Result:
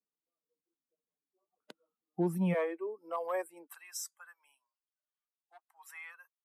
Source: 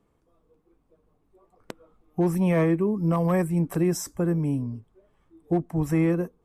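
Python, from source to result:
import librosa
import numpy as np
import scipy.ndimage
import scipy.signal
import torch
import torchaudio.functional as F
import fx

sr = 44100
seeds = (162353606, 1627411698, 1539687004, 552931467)

y = fx.bin_expand(x, sr, power=1.5)
y = fx.steep_highpass(y, sr, hz=fx.steps((0.0, 160.0), (2.53, 420.0), (3.66, 1000.0)), slope=36)
y = y * 10.0 ** (-5.5 / 20.0)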